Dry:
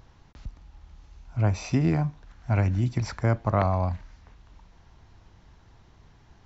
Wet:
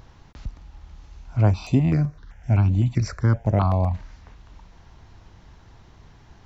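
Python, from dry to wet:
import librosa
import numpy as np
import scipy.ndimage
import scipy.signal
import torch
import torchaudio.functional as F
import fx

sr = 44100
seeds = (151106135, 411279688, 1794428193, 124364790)

y = fx.dynamic_eq(x, sr, hz=1900.0, q=1.1, threshold_db=-46.0, ratio=4.0, max_db=-5)
y = fx.phaser_held(y, sr, hz=7.8, low_hz=880.0, high_hz=5400.0, at=(1.51, 3.93), fade=0.02)
y = F.gain(torch.from_numpy(y), 5.5).numpy()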